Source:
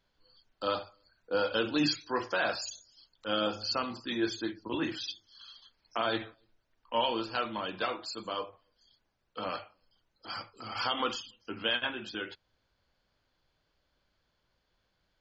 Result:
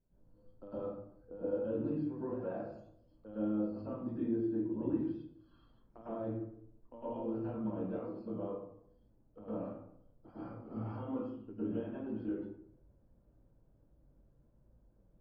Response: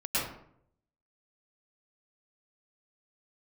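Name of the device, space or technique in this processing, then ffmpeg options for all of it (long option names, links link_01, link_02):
television next door: -filter_complex "[0:a]acompressor=threshold=-44dB:ratio=3,lowpass=380[link_01];[1:a]atrim=start_sample=2205[link_02];[link_01][link_02]afir=irnorm=-1:irlink=0,volume=3dB"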